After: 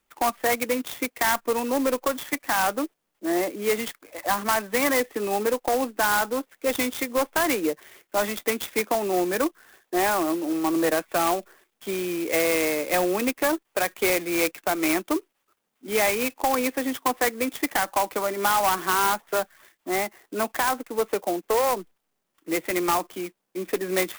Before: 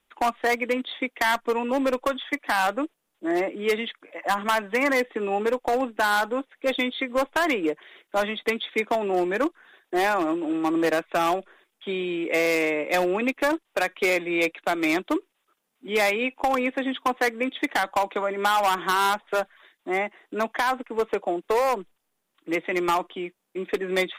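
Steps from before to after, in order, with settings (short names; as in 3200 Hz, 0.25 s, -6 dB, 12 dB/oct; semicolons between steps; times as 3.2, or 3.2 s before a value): clock jitter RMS 0.057 ms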